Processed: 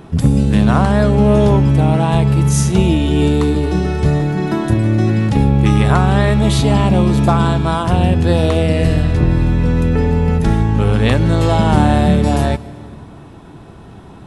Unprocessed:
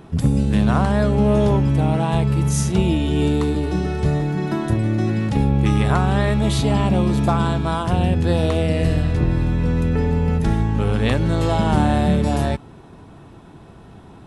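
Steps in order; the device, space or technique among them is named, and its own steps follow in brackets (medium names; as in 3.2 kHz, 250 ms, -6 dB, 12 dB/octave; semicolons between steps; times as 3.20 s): compressed reverb return (on a send at -12 dB: reverberation RT60 1.2 s, pre-delay 112 ms + compression, threshold -21 dBFS, peak gain reduction 11 dB); on the sum: trim +5 dB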